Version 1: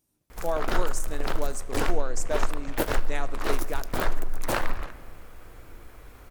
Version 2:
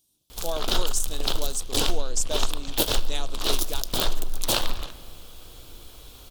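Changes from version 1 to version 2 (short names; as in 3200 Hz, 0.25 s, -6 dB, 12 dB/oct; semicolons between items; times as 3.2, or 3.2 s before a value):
speech: send off; master: add resonant high shelf 2600 Hz +9.5 dB, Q 3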